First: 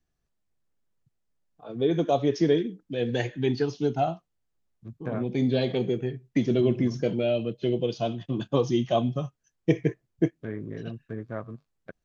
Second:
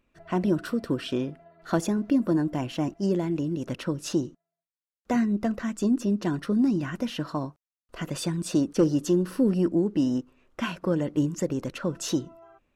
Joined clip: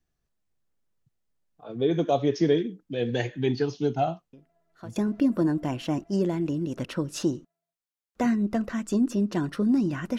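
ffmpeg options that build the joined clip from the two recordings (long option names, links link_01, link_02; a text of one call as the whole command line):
ffmpeg -i cue0.wav -i cue1.wav -filter_complex "[1:a]asplit=2[link_01][link_02];[0:a]apad=whole_dur=10.18,atrim=end=10.18,atrim=end=4.962[link_03];[link_02]atrim=start=1.858:end=7.08[link_04];[link_01]atrim=start=1.23:end=1.86,asetpts=PTS-STARTPTS,volume=-18dB,afade=type=in:duration=0.004:curve=hsin,afade=type=out:start_time=0.626:duration=0.004:curve=hsin,adelay=190953S[link_05];[link_03][link_04]acrossfade=duration=0.004:curve1=hsin:curve2=hsin[link_06];[link_06][link_05]amix=inputs=2:normalize=0" out.wav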